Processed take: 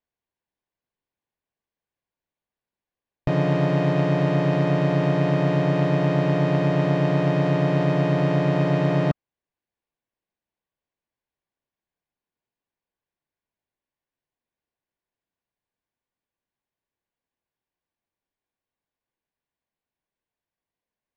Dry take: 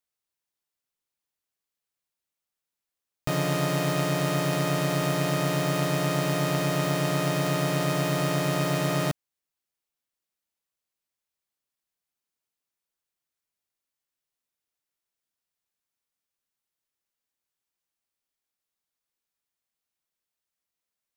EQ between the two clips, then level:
Butterworth band-reject 1,300 Hz, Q 7
head-to-tape spacing loss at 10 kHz 36 dB
+7.0 dB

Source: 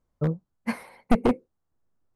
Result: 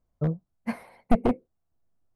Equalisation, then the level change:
low-shelf EQ 220 Hz +6 dB
dynamic equaliser 6,900 Hz, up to −4 dB, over −53 dBFS, Q 0.72
parametric band 680 Hz +7.5 dB 0.27 octaves
−4.5 dB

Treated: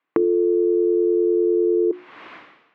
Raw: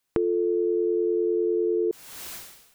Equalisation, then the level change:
loudspeaker in its box 210–2,600 Hz, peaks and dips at 300 Hz +8 dB, 1,100 Hz +7 dB, 2,000 Hz +3 dB
mains-hum notches 60/120/180/240/300/360 Hz
+4.0 dB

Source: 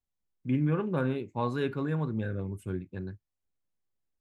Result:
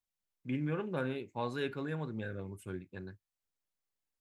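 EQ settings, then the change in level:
dynamic equaliser 1,100 Hz, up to −6 dB, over −50 dBFS, Q 2.5
low-shelf EQ 430 Hz −10 dB
0.0 dB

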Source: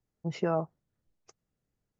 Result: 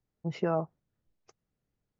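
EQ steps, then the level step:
high-frequency loss of the air 81 metres
0.0 dB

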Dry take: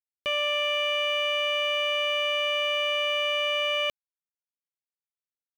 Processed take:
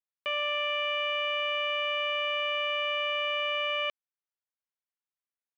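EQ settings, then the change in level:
resonant band-pass 1,400 Hz, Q 0.68
high-frequency loss of the air 68 metres
0.0 dB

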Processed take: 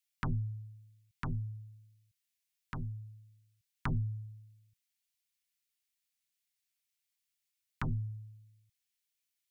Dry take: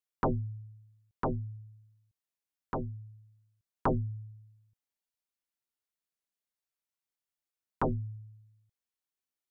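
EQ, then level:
drawn EQ curve 160 Hz 0 dB, 560 Hz −25 dB, 2,200 Hz +7 dB
0.0 dB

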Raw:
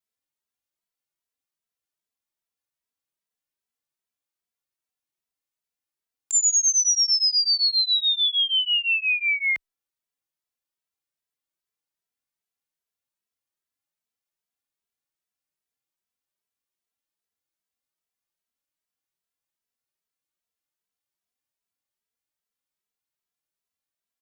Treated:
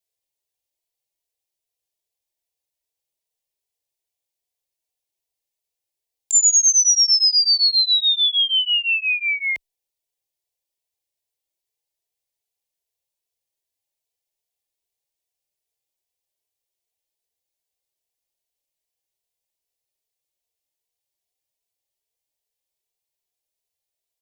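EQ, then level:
phaser with its sweep stopped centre 550 Hz, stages 4
+5.5 dB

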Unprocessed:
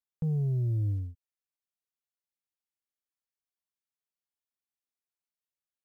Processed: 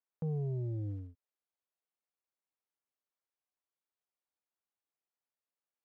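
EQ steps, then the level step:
resonant band-pass 680 Hz, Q 0.64
+3.0 dB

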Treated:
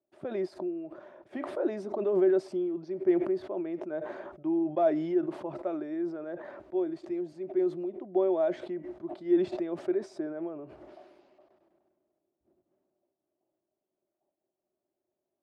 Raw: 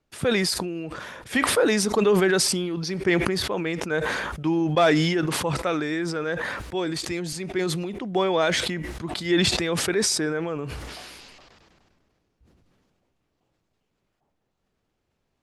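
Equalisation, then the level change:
pair of resonant band-passes 470 Hz, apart 0.71 octaves
0.0 dB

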